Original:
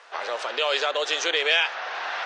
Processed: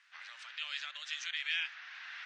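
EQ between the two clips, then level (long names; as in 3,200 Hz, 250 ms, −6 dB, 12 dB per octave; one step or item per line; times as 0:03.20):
four-pole ladder high-pass 1,500 Hz, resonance 35%
−8.5 dB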